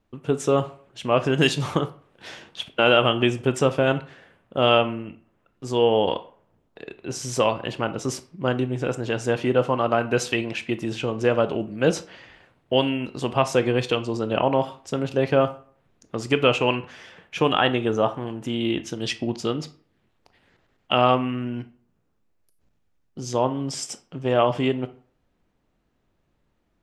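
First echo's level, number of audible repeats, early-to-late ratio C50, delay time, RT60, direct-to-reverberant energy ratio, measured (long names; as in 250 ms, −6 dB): no echo audible, no echo audible, 15.5 dB, no echo audible, 0.50 s, 11.0 dB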